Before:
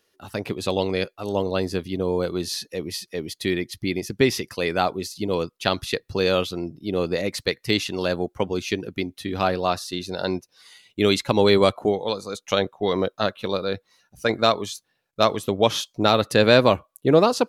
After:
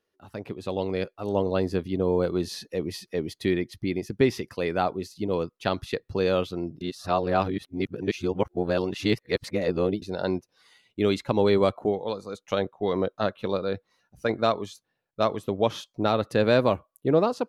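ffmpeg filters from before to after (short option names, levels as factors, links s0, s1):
-filter_complex "[0:a]asettb=1/sr,asplit=3[s0][s1][s2];[s0]atrim=end=16.464[s3];[s1]atrim=start=16.46:end=17.1,asetpts=PTS-STARTPTS,afade=t=in:d=0.004:c=qsin,afade=t=out:st=0.636:d=0.004:c=qsin,highshelf=f=8900:g=7.5[s4];[s2]atrim=start=17.096[s5];[s3][s4]acrossfade=d=0.004:c1=hsin:c2=qsin[s6];[s6][s5]acrossfade=d=0.004:c1=qsin:c2=hsin,asplit=3[s7][s8][s9];[s7]atrim=end=6.812[s10];[s8]atrim=start=6.808:end=10.022,asetpts=PTS-STARTPTS,areverse[s11];[s9]atrim=start=10.018[s12];[s10][s11]acrossfade=d=0.004:c1=hsin:c2=hsin[s13];[s13][s12]acrossfade=d=0.004:c1=hsin:c2=hsin,highshelf=f=2400:g=-11,dynaudnorm=f=640:g=3:m=3.76,volume=0.422"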